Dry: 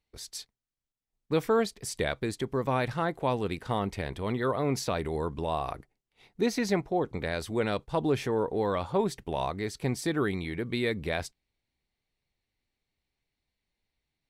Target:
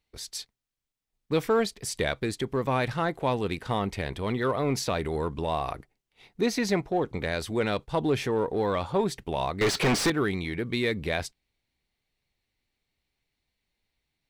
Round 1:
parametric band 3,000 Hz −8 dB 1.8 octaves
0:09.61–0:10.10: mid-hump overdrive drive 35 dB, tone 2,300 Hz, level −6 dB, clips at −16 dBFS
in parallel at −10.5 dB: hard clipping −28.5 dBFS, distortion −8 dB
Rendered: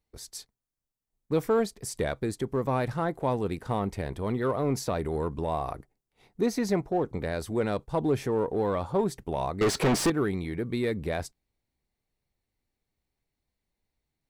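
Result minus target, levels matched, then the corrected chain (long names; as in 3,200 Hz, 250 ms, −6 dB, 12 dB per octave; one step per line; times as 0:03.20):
4,000 Hz band −5.5 dB
parametric band 3,000 Hz +2.5 dB 1.8 octaves
0:09.61–0:10.10: mid-hump overdrive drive 35 dB, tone 2,300 Hz, level −6 dB, clips at −16 dBFS
in parallel at −10.5 dB: hard clipping −28.5 dBFS, distortion −7 dB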